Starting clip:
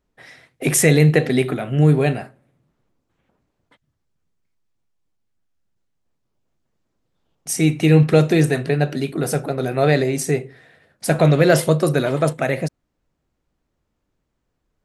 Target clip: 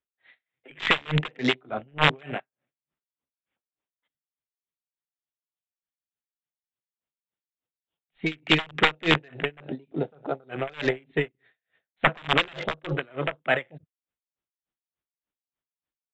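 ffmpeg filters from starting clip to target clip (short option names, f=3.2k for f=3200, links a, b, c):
-filter_complex "[0:a]highpass=f=94:p=1,aeval=exprs='0.944*(cos(1*acos(clip(val(0)/0.944,-1,1)))-cos(1*PI/2))+0.0266*(cos(6*acos(clip(val(0)/0.944,-1,1)))-cos(6*PI/2))':c=same,acrossover=split=380|2000[a][b][c];[a]aecho=1:1:74:0.0944[d];[b]acrusher=bits=3:mode=log:mix=0:aa=0.000001[e];[d][e][c]amix=inputs=3:normalize=0,aeval=exprs='(mod(2.37*val(0)+1,2)-1)/2.37':c=same,aresample=8000,aresample=44100,alimiter=limit=-9.5dB:level=0:latency=1:release=37,tiltshelf=f=1.2k:g=-6.5,afwtdn=0.0355,equalizer=f=130:t=o:w=2.6:g=-3,atempo=0.92,aeval=exprs='val(0)*pow(10,-32*(0.5-0.5*cos(2*PI*3.4*n/s))/20)':c=same,volume=4dB"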